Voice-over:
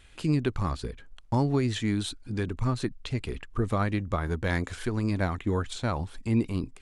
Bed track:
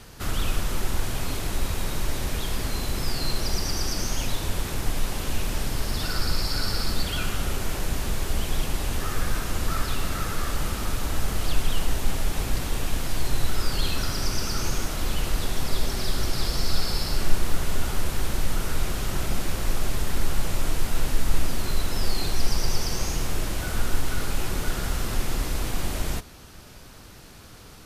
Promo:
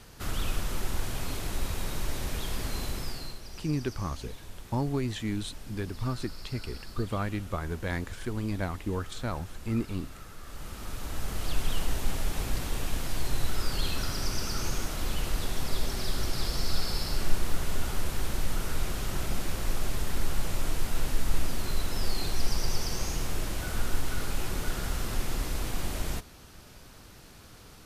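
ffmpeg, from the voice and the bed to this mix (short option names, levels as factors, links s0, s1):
-filter_complex "[0:a]adelay=3400,volume=0.596[s0];[1:a]volume=2.66,afade=t=out:st=2.84:d=0.56:silence=0.223872,afade=t=in:st=10.42:d=1.29:silence=0.211349[s1];[s0][s1]amix=inputs=2:normalize=0"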